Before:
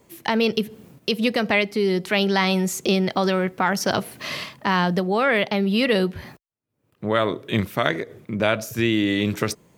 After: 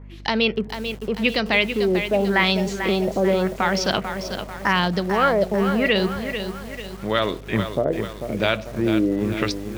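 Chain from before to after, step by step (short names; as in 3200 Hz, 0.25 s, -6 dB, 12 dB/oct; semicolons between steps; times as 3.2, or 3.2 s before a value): hum 50 Hz, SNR 16 dB; LFO low-pass sine 0.86 Hz 500–4800 Hz; lo-fi delay 0.443 s, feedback 55%, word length 6-bit, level -8 dB; gain -1.5 dB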